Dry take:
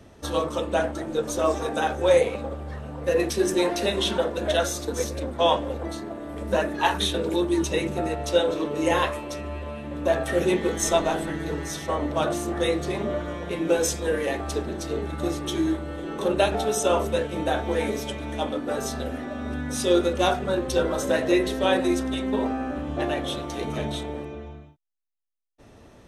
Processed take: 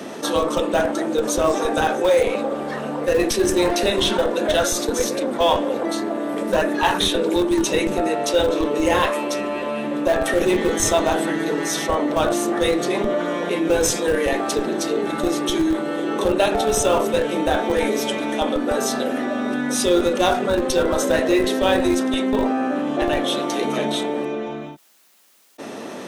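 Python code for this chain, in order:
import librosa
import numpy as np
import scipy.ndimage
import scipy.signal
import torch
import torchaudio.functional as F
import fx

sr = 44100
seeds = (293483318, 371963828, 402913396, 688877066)

p1 = scipy.signal.sosfilt(scipy.signal.butter(4, 200.0, 'highpass', fs=sr, output='sos'), x)
p2 = fx.schmitt(p1, sr, flips_db=-18.0)
p3 = p1 + F.gain(torch.from_numpy(p2), -7.0).numpy()
y = fx.env_flatten(p3, sr, amount_pct=50)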